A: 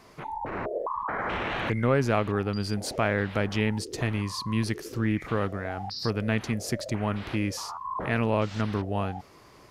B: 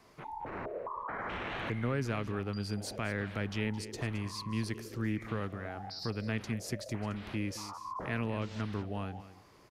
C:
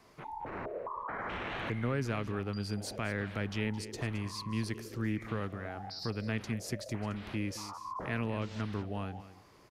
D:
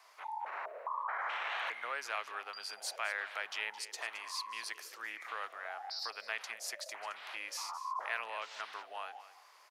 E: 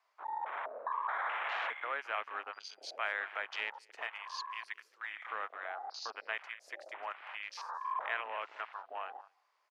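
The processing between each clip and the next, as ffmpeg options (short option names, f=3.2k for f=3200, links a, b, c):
-filter_complex "[0:a]acrossover=split=380|1200|4800[a][b][c][d];[b]alimiter=level_in=3.5dB:limit=-24dB:level=0:latency=1:release=393,volume=-3.5dB[e];[a][e][c][d]amix=inputs=4:normalize=0,aecho=1:1:217|434:0.188|0.0283,volume=-7.5dB"
-af anull
-af "highpass=f=740:w=0.5412,highpass=f=740:w=1.3066,volume=2.5dB"
-af "afwtdn=0.00562,aemphasis=mode=reproduction:type=50kf,volume=2.5dB"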